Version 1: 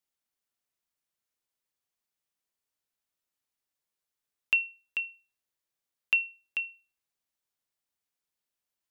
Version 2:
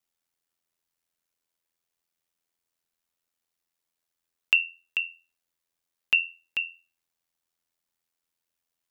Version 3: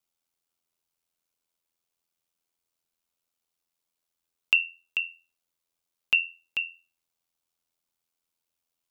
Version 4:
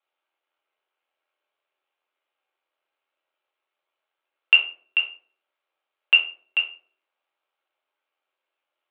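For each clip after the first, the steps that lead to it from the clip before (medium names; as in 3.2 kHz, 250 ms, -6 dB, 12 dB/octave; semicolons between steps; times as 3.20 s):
ring modulator 42 Hz; trim +6.5 dB
peaking EQ 1.8 kHz -7 dB 0.31 oct
reverberation RT60 0.45 s, pre-delay 4 ms, DRR -0.5 dB; mistuned SSB +51 Hz 360–3200 Hz; trim +6 dB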